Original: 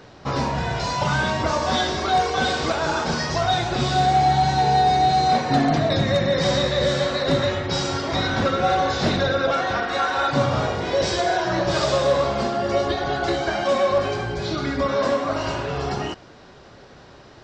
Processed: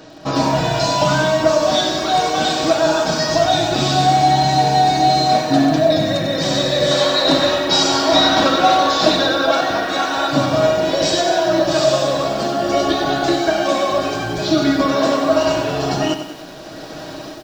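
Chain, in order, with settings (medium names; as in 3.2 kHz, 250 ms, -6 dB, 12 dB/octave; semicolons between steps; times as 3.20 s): treble shelf 2.1 kHz +11 dB; band-stop 2.1 kHz, Q 13; comb 6.3 ms, depth 47%; small resonant body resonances 290/620 Hz, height 13 dB, ringing for 30 ms; level rider gain up to 10 dB; 6.91–9.61 s: graphic EQ 125/1000/4000 Hz -8/+6/+4 dB; bit-crushed delay 95 ms, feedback 55%, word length 6-bit, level -9 dB; trim -3 dB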